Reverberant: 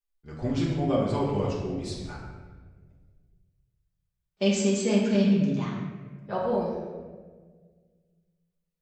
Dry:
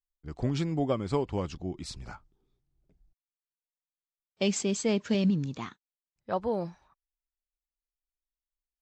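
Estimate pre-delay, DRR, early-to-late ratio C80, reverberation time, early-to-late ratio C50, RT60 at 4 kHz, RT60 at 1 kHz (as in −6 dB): 5 ms, −6.0 dB, 3.0 dB, 1.5 s, 1.0 dB, 0.95 s, 1.2 s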